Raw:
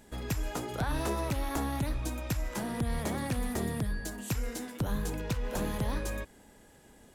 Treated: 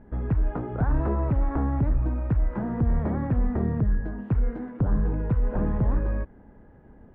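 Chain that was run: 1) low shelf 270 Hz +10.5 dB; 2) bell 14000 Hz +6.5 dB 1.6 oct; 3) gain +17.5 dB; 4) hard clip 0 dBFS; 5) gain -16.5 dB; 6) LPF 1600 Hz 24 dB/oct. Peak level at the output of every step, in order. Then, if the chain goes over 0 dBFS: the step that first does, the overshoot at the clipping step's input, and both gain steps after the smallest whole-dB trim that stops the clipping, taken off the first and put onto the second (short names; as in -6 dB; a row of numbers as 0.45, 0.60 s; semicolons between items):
-14.0, -13.5, +4.0, 0.0, -16.5, -16.0 dBFS; step 3, 4.0 dB; step 3 +13.5 dB, step 5 -12.5 dB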